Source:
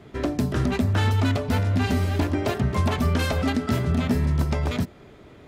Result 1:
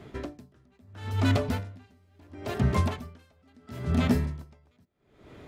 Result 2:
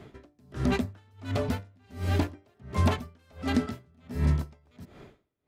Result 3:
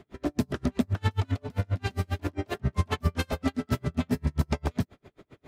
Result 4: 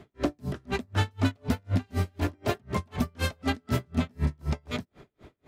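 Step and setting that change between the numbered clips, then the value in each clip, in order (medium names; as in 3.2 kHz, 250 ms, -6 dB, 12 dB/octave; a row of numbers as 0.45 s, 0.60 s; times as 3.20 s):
logarithmic tremolo, rate: 0.74 Hz, 1.4 Hz, 7.5 Hz, 4 Hz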